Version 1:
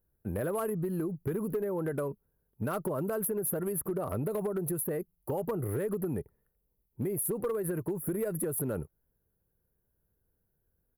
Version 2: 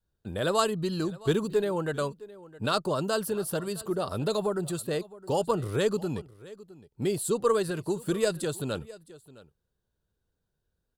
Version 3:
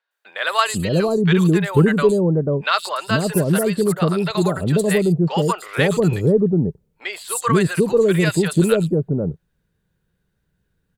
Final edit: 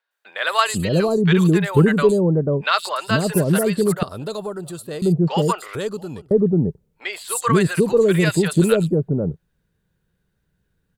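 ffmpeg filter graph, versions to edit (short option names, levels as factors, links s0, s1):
-filter_complex "[1:a]asplit=2[s0][s1];[2:a]asplit=3[s2][s3][s4];[s2]atrim=end=4.032[s5];[s0]atrim=start=4.028:end=5.022[s6];[s3]atrim=start=5.018:end=5.752[s7];[s1]atrim=start=5.748:end=6.312[s8];[s4]atrim=start=6.308[s9];[s5][s6]acrossfade=d=0.004:c1=hsin:c2=hsin[s10];[s10][s7]acrossfade=d=0.004:c1=hsin:c2=hsin[s11];[s11][s8]acrossfade=d=0.004:c1=hsin:c2=hsin[s12];[s12][s9]acrossfade=d=0.004:c1=hsin:c2=hsin"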